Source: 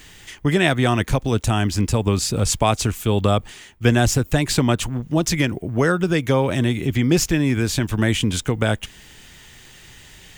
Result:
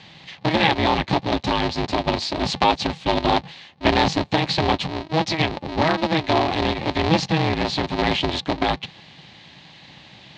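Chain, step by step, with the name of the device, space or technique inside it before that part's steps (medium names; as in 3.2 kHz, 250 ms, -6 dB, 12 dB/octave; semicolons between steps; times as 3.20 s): 1.71–2.42 s: bass shelf 65 Hz -10 dB; ring modulator pedal into a guitar cabinet (polarity switched at an audio rate 160 Hz; cabinet simulation 90–4500 Hz, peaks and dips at 150 Hz +3 dB, 250 Hz -4 dB, 460 Hz -7 dB, 830 Hz +6 dB, 1.4 kHz -8 dB, 4.1 kHz +7 dB)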